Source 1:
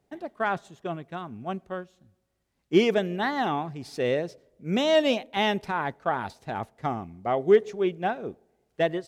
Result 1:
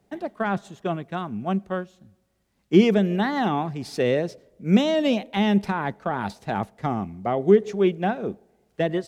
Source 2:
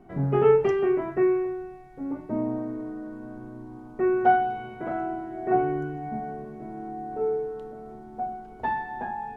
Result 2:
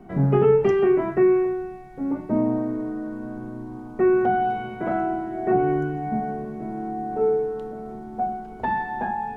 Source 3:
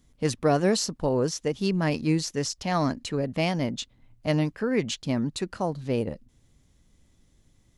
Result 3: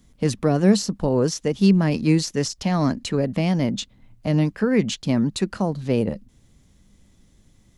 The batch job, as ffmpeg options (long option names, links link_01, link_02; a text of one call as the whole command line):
ffmpeg -i in.wav -filter_complex "[0:a]equalizer=frequency=200:width=6.9:gain=8,acrossover=split=370[link_01][link_02];[link_02]alimiter=limit=-22.5dB:level=0:latency=1:release=154[link_03];[link_01][link_03]amix=inputs=2:normalize=0,volume=5.5dB" out.wav